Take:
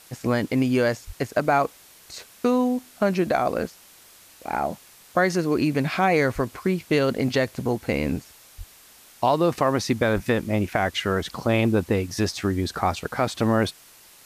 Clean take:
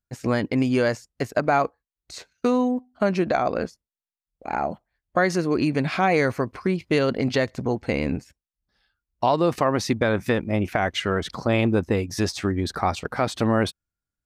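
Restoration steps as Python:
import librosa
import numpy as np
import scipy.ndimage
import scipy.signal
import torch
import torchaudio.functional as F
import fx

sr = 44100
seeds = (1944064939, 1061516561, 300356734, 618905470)

y = fx.fix_deplosive(x, sr, at_s=(1.06, 6.34, 8.57, 10.14))
y = fx.noise_reduce(y, sr, print_start_s=3.91, print_end_s=4.41, reduce_db=30.0)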